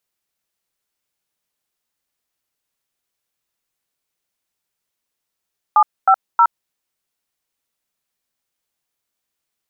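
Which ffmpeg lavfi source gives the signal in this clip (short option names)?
-f lavfi -i "aevalsrc='0.299*clip(min(mod(t,0.315),0.068-mod(t,0.315))/0.002,0,1)*(eq(floor(t/0.315),0)*(sin(2*PI*852*mod(t,0.315))+sin(2*PI*1209*mod(t,0.315)))+eq(floor(t/0.315),1)*(sin(2*PI*770*mod(t,0.315))+sin(2*PI*1336*mod(t,0.315)))+eq(floor(t/0.315),2)*(sin(2*PI*941*mod(t,0.315))+sin(2*PI*1336*mod(t,0.315))))':d=0.945:s=44100"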